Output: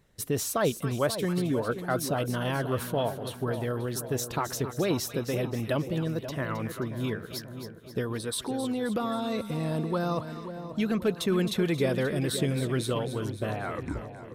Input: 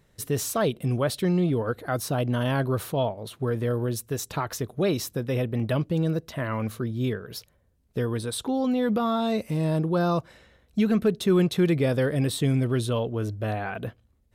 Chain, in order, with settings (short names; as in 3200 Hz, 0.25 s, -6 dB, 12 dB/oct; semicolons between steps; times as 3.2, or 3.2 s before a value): tape stop at the end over 0.73 s; harmonic-percussive split harmonic -6 dB; split-band echo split 1000 Hz, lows 0.534 s, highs 0.266 s, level -10 dB